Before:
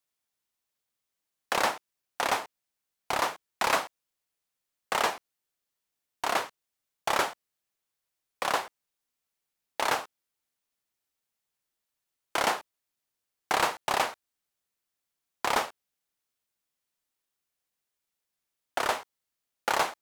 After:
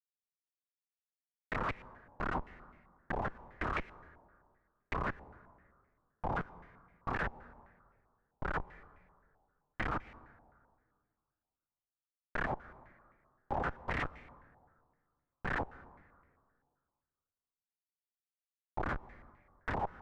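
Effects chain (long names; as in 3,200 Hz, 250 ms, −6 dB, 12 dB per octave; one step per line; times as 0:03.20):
noise gate −40 dBFS, range −8 dB
gate on every frequency bin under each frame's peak −25 dB weak
comparator with hysteresis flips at −41 dBFS
dense smooth reverb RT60 2 s, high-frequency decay 0.45×, pre-delay 115 ms, DRR 18 dB
low-pass on a step sequencer 7.7 Hz 840–2,200 Hz
level +16 dB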